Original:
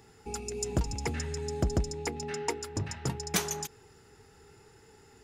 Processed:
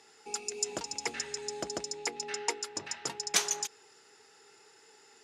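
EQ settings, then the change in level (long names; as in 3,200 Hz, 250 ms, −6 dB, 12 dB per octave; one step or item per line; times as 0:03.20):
band-pass filter 410–7,500 Hz
high-shelf EQ 2,500 Hz +9 dB
−2.0 dB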